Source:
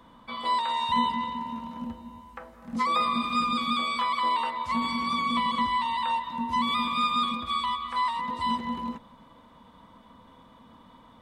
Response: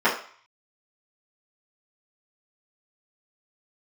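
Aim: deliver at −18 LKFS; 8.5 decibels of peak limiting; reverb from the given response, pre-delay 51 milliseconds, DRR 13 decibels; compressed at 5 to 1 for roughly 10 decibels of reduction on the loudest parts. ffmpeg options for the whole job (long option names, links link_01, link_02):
-filter_complex "[0:a]acompressor=threshold=-33dB:ratio=5,alimiter=level_in=8.5dB:limit=-24dB:level=0:latency=1,volume=-8.5dB,asplit=2[link_01][link_02];[1:a]atrim=start_sample=2205,adelay=51[link_03];[link_02][link_03]afir=irnorm=-1:irlink=0,volume=-32dB[link_04];[link_01][link_04]amix=inputs=2:normalize=0,volume=21.5dB"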